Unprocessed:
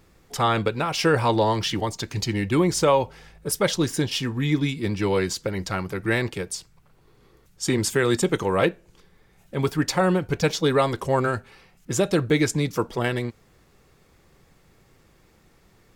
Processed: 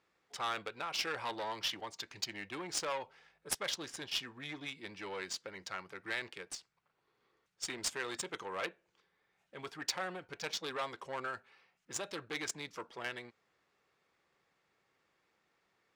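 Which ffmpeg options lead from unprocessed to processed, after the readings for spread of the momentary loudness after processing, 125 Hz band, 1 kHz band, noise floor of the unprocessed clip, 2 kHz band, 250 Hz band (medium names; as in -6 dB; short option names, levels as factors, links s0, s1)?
9 LU, -30.5 dB, -15.5 dB, -59 dBFS, -12.0 dB, -25.0 dB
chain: -af "asoftclip=type=tanh:threshold=0.133,aderivative,adynamicsmooth=sensitivity=2.5:basefreq=1800,volume=1.88"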